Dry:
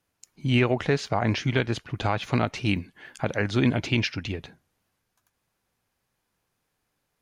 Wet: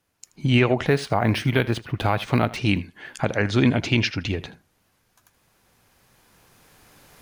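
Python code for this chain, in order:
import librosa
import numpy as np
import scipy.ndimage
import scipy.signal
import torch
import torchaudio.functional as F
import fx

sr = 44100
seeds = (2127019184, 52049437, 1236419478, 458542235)

p1 = fx.recorder_agc(x, sr, target_db=-17.5, rise_db_per_s=7.2, max_gain_db=30)
p2 = p1 + fx.echo_single(p1, sr, ms=79, db=-19.0, dry=0)
p3 = fx.resample_linear(p2, sr, factor=3, at=(0.86, 2.57))
y = p3 * 10.0 ** (3.5 / 20.0)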